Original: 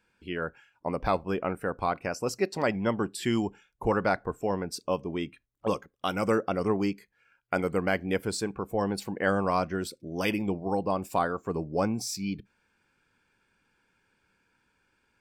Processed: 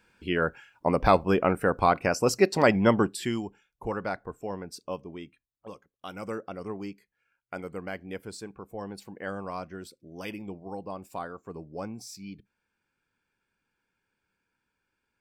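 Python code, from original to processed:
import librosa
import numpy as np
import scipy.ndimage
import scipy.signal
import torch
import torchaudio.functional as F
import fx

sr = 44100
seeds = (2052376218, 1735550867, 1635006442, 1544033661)

y = fx.gain(x, sr, db=fx.line((2.98, 6.5), (3.43, -6.0), (4.95, -6.0), (5.74, -16.0), (6.16, -9.5)))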